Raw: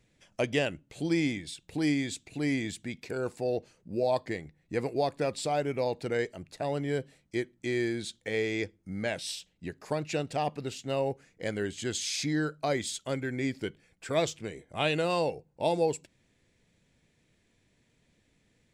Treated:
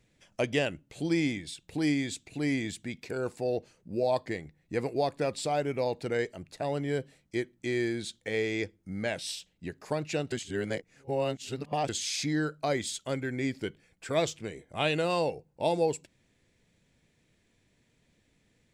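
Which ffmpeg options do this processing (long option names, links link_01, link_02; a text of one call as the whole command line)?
ffmpeg -i in.wav -filter_complex "[0:a]asplit=3[link_01][link_02][link_03];[link_01]atrim=end=10.322[link_04];[link_02]atrim=start=10.318:end=11.892,asetpts=PTS-STARTPTS,areverse[link_05];[link_03]atrim=start=11.888[link_06];[link_04][link_05]acrossfade=duration=0.004:curve1=hsin:curve2=hsin[link_07];[link_07][link_06]acrossfade=duration=0.004:curve1=hsin:curve2=hsin" out.wav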